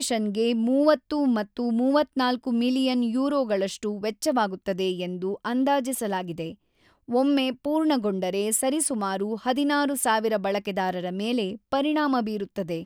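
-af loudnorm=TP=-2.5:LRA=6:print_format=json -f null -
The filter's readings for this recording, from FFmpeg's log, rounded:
"input_i" : "-25.4",
"input_tp" : "-8.0",
"input_lra" : "1.7",
"input_thresh" : "-35.5",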